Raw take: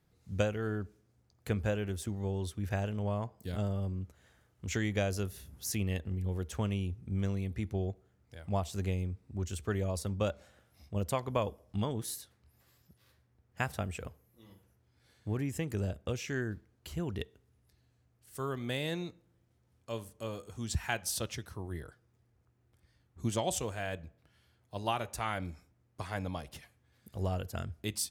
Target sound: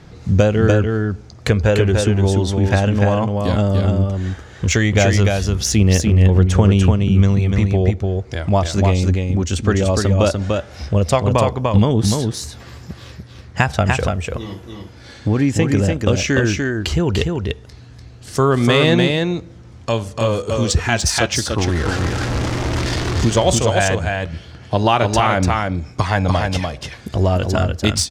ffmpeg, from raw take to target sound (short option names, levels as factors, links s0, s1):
-filter_complex "[0:a]asettb=1/sr,asplit=3[s0][s1][s2];[s0]atrim=end=21.584[s3];[s1]atrim=start=21.58:end=23.3,asetpts=PTS-STARTPTS,afade=t=in:d=0.004:c=qsin,afade=t=out:st=1.716:d=0.004:c=qsin,aeval=exprs='val(0)+0.5*0.00944*sgn(val(0))':c=same[s4];[s2]atrim=start=23.296[s5];[s3][s4]acrossfade=d=0.004:c1=hsin:c2=qsin[s6];[s6][s5]acrossfade=d=0.004:c1=qsin:c2=hsin,equalizer=f=6100:w=1.1:g=7,acompressor=threshold=0.00355:ratio=2,aphaser=in_gain=1:out_gain=1:delay=3.8:decay=0.27:speed=0.16:type=sinusoidal,adynamicsmooth=sensitivity=5.5:basefreq=4900,aecho=1:1:294:0.631,alimiter=level_in=28.2:limit=0.891:release=50:level=0:latency=1,volume=0.891"